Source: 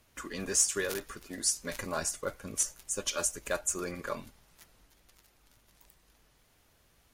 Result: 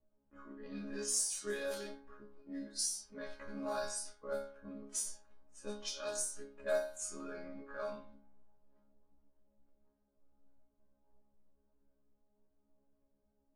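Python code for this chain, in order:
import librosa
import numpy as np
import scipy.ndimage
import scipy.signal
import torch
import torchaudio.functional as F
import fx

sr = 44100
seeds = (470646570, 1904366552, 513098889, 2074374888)

y = fx.stretch_grains(x, sr, factor=1.9, grain_ms=60.0)
y = fx.resonator_bank(y, sr, root=56, chord='sus4', decay_s=0.48)
y = fx.env_lowpass(y, sr, base_hz=520.0, full_db=-46.5)
y = y * librosa.db_to_amplitude(12.5)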